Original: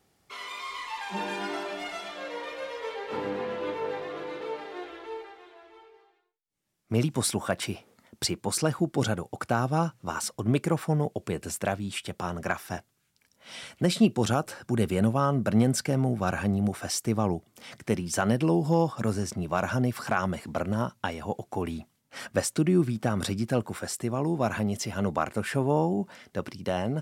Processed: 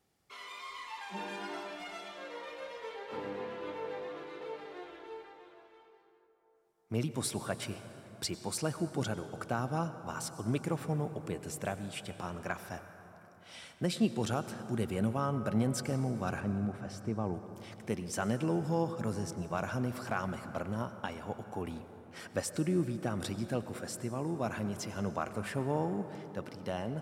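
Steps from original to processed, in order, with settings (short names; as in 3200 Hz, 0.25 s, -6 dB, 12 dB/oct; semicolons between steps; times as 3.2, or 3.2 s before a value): 16.4–17.34 LPF 1300 Hz 6 dB/oct; reverb RT60 4.0 s, pre-delay 82 ms, DRR 10.5 dB; gain -8 dB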